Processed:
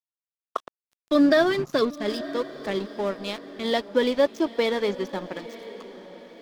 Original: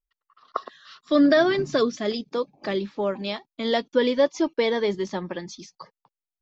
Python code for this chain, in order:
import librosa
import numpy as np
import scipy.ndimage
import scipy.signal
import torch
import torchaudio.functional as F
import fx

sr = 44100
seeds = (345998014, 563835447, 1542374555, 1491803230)

y = np.sign(x) * np.maximum(np.abs(x) - 10.0 ** (-37.0 / 20.0), 0.0)
y = fx.echo_diffused(y, sr, ms=901, feedback_pct=44, wet_db=-15.5)